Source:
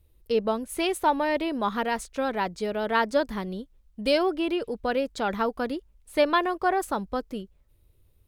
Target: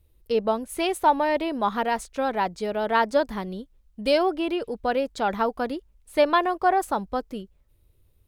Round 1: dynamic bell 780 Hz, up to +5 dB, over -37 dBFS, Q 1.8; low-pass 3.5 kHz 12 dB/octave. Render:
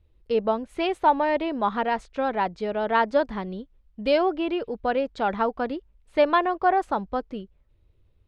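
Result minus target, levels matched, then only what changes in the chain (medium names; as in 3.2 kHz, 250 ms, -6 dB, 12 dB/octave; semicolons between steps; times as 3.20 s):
4 kHz band -2.5 dB
remove: low-pass 3.5 kHz 12 dB/octave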